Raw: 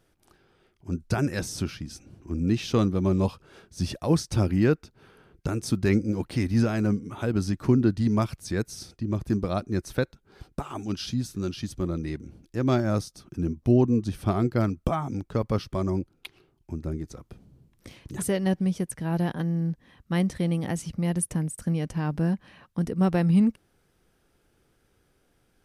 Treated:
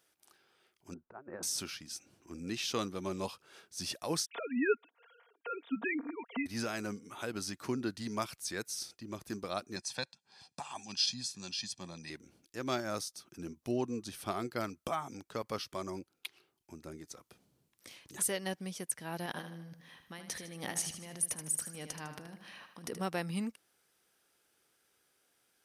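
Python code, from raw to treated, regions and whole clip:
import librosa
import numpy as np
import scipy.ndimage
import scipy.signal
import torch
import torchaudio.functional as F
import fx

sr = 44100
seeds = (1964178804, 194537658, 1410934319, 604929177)

y = fx.chain(x, sr, fx.lowpass(hz=1200.0, slope=24),
    fx.low_shelf(hz=130.0, db=-11.0),
    fx.over_compress(threshold_db=-34.0, ratio=-0.5), at=(0.94, 1.43))
y = fx.chain(y, sr, fx.sine_speech(),
    fx.comb(ms=4.3, depth=0.59), at=(4.26, 6.46))
y = fx.chain(y, sr, fx.cabinet(low_hz=130.0, low_slope=12, high_hz=9000.0, hz=(310.0, 620.0, 1500.0, 4600.0), db=(-9, -4, -7, 7)),
    fx.comb(ms=1.2, depth=0.64), at=(9.76, 12.1))
y = fx.chain(y, sr, fx.notch(hz=7600.0, q=6.9),
    fx.over_compress(threshold_db=-31.0, ratio=-1.0),
    fx.echo_feedback(ms=77, feedback_pct=47, wet_db=-9), at=(19.26, 23.0))
y = fx.highpass(y, sr, hz=860.0, slope=6)
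y = fx.high_shelf(y, sr, hz=3800.0, db=7.0)
y = y * 10.0 ** (-4.0 / 20.0)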